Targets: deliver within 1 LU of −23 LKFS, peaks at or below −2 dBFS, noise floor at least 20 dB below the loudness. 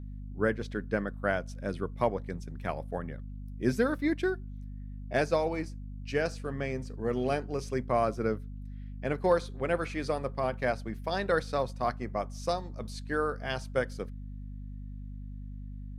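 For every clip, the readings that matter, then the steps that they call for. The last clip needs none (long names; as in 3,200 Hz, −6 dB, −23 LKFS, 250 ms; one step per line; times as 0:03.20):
mains hum 50 Hz; hum harmonics up to 250 Hz; level of the hum −38 dBFS; integrated loudness −32.0 LKFS; sample peak −13.0 dBFS; target loudness −23.0 LKFS
→ mains-hum notches 50/100/150/200/250 Hz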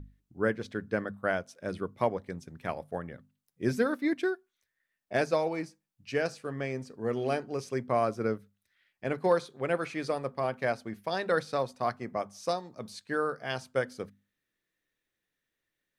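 mains hum none found; integrated loudness −32.5 LKFS; sample peak −13.0 dBFS; target loudness −23.0 LKFS
→ level +9.5 dB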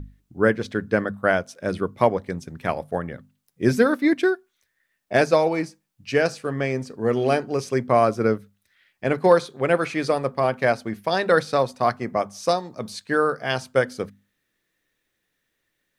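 integrated loudness −23.0 LKFS; sample peak −3.5 dBFS; background noise floor −76 dBFS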